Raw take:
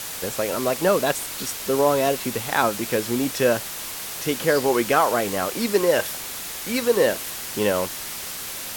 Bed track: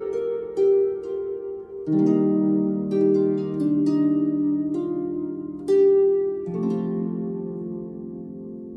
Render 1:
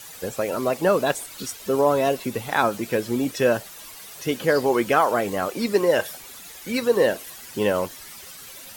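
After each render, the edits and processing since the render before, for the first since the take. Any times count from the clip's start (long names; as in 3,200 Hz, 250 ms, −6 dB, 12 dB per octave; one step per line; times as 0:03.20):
broadband denoise 12 dB, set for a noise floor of −33 dBFS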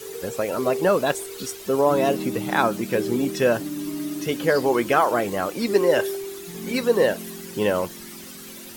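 mix in bed track −9.5 dB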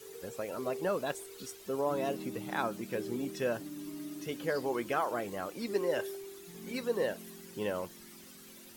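level −13 dB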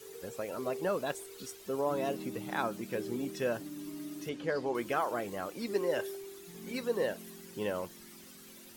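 0:04.29–0:04.75: high-frequency loss of the air 76 metres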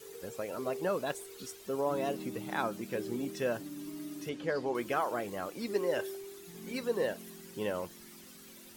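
tape wow and flutter 18 cents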